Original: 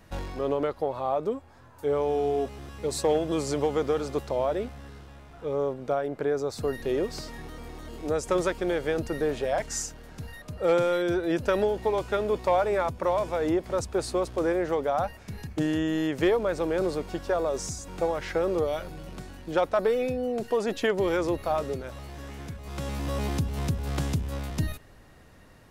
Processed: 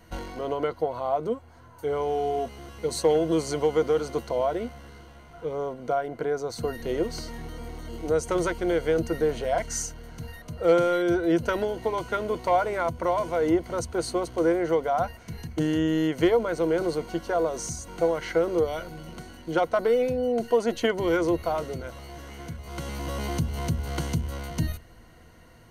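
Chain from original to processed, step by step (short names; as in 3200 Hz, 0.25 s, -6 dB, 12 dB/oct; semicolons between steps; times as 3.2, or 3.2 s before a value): ripple EQ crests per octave 1.9, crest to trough 10 dB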